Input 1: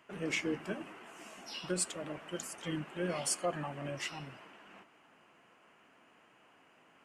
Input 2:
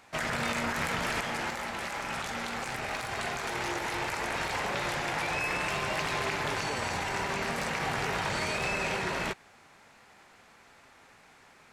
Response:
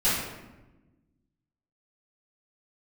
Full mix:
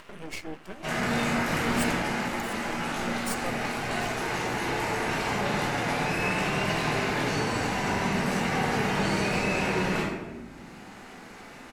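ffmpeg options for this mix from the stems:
-filter_complex "[0:a]aeval=exprs='max(val(0),0)':channel_layout=same,volume=1dB[link_01];[1:a]equalizer=frequency=290:width=1.2:gain=8.5,adelay=700,volume=-8dB,asplit=2[link_02][link_03];[link_03]volume=-4dB[link_04];[2:a]atrim=start_sample=2205[link_05];[link_04][link_05]afir=irnorm=-1:irlink=0[link_06];[link_01][link_02][link_06]amix=inputs=3:normalize=0,acompressor=mode=upward:threshold=-36dB:ratio=2.5,highshelf=frequency=11000:gain=4"

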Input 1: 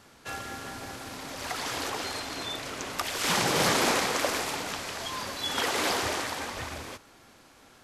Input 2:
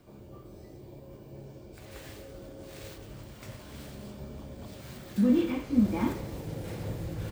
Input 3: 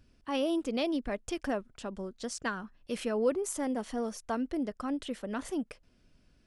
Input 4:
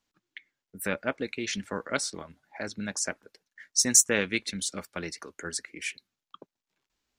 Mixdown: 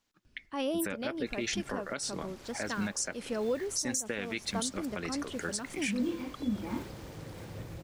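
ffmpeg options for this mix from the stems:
ffmpeg -i stem1.wav -i stem2.wav -i stem3.wav -i stem4.wav -filter_complex "[0:a]acompressor=threshold=-36dB:ratio=6,adelay=1000,volume=-15dB[link_01];[1:a]adelay=700,volume=-7.5dB[link_02];[2:a]adelay=250,volume=-2dB[link_03];[3:a]volume=1.5dB[link_04];[link_01][link_02][link_03][link_04]amix=inputs=4:normalize=0,alimiter=limit=-22dB:level=0:latency=1:release=203" out.wav

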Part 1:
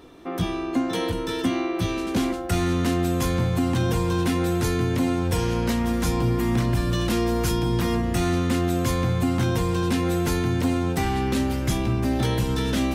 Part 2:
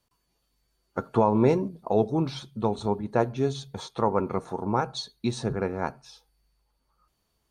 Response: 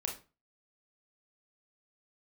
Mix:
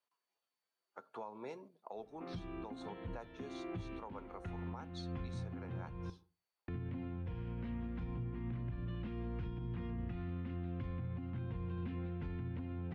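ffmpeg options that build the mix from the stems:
-filter_complex "[0:a]lowpass=frequency=2700:width=0.5412,lowpass=frequency=2700:width=1.3066,acompressor=threshold=-24dB:ratio=6,adelay=1950,volume=-5dB,asplit=3[link_01][link_02][link_03];[link_01]atrim=end=6.1,asetpts=PTS-STARTPTS,afade=type=out:start_time=6.096:duration=0.004:curve=hsin[link_04];[link_02]atrim=start=6.1:end=6.68,asetpts=PTS-STARTPTS,volume=0[link_05];[link_03]atrim=start=6.68,asetpts=PTS-STARTPTS,afade=type=in:duration=0.004:curve=hsin[link_06];[link_04][link_05][link_06]concat=n=3:v=0:a=1,asplit=2[link_07][link_08];[link_08]volume=-19.5dB[link_09];[1:a]highpass=590,volume=-10.5dB,asplit=2[link_10][link_11];[link_11]apad=whole_len=657086[link_12];[link_07][link_12]sidechaincompress=threshold=-49dB:ratio=8:attack=7.7:release=442[link_13];[2:a]atrim=start_sample=2205[link_14];[link_09][link_14]afir=irnorm=-1:irlink=0[link_15];[link_13][link_10][link_15]amix=inputs=3:normalize=0,bass=frequency=250:gain=2,treble=frequency=4000:gain=-9,acrossover=split=220|3000[link_16][link_17][link_18];[link_17]acompressor=threshold=-49dB:ratio=2[link_19];[link_16][link_19][link_18]amix=inputs=3:normalize=0,alimiter=level_in=10dB:limit=-24dB:level=0:latency=1:release=470,volume=-10dB"

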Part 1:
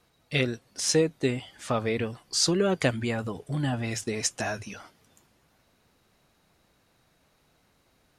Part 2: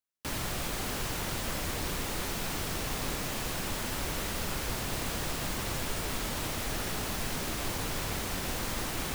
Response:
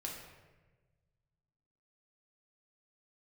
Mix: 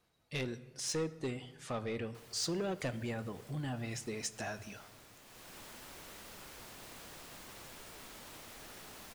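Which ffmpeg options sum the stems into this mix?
-filter_complex "[0:a]asoftclip=type=tanh:threshold=-21dB,volume=-10.5dB,asplit=3[link_01][link_02][link_03];[link_02]volume=-10dB[link_04];[1:a]lowshelf=frequency=170:gain=-10.5,adelay=1900,volume=-15.5dB,afade=type=in:start_time=5.24:duration=0.33:silence=0.421697[link_05];[link_03]apad=whole_len=487032[link_06];[link_05][link_06]sidechaincompress=threshold=-44dB:ratio=8:attack=16:release=161[link_07];[2:a]atrim=start_sample=2205[link_08];[link_04][link_08]afir=irnorm=-1:irlink=0[link_09];[link_01][link_07][link_09]amix=inputs=3:normalize=0"

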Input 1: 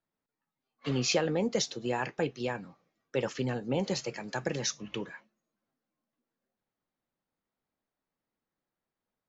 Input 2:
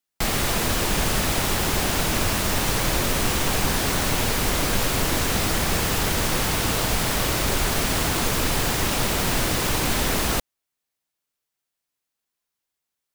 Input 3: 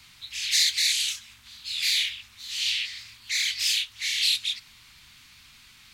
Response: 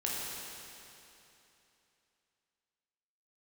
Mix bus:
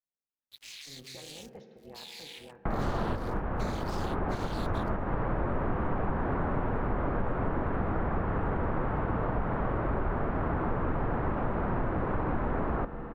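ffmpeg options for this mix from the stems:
-filter_complex "[0:a]lowpass=1700,volume=-16.5dB,asplit=3[link_01][link_02][link_03];[link_02]volume=-12.5dB[link_04];[1:a]lowpass=frequency=1400:width=0.5412,lowpass=frequency=1400:width=1.3066,adelay=2450,volume=0dB,asplit=2[link_05][link_06];[link_06]volume=-15dB[link_07];[2:a]acompressor=threshold=-28dB:ratio=6,aeval=exprs='sgn(val(0))*max(abs(val(0))-0.00841,0)':channel_layout=same,adelay=300,volume=-3.5dB[link_08];[link_03]apad=whole_len=687592[link_09];[link_05][link_09]sidechaincompress=threshold=-54dB:ratio=8:attack=16:release=255[link_10];[link_01][link_08]amix=inputs=2:normalize=0,tremolo=f=290:d=0.947,alimiter=level_in=9dB:limit=-24dB:level=0:latency=1:release=91,volume=-9dB,volume=0dB[link_11];[3:a]atrim=start_sample=2205[link_12];[link_04][link_07]amix=inputs=2:normalize=0[link_13];[link_13][link_12]afir=irnorm=-1:irlink=0[link_14];[link_10][link_11][link_14]amix=inputs=3:normalize=0,acompressor=threshold=-29dB:ratio=2.5"

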